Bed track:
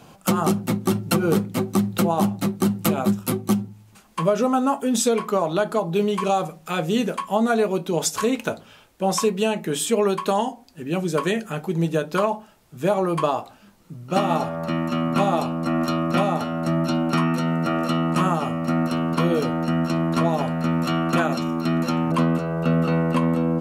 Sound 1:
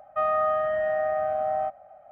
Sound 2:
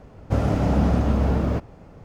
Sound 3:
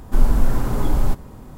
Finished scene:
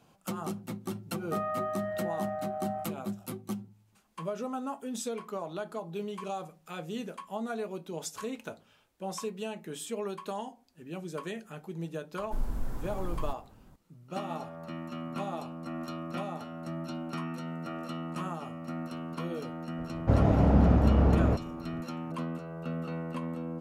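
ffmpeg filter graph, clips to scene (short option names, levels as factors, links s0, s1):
-filter_complex "[0:a]volume=0.168[s0];[2:a]lowpass=f=1600:p=1[s1];[1:a]atrim=end=2.11,asetpts=PTS-STARTPTS,volume=0.335,afade=t=in:d=0.004:c=hsin,afade=t=out:st=2.106:d=0.004:c=hsin,adelay=1150[s2];[3:a]atrim=end=1.57,asetpts=PTS-STARTPTS,volume=0.141,afade=t=in:d=0.004:c=hsin,afade=t=out:st=1.566:d=0.004:c=hsin,adelay=12190[s3];[s1]atrim=end=2.04,asetpts=PTS-STARTPTS,volume=0.794,afade=t=in:d=0.004:c=hsin,afade=t=out:st=2.036:d=0.004:c=hsin,adelay=19770[s4];[s0][s2][s3][s4]amix=inputs=4:normalize=0"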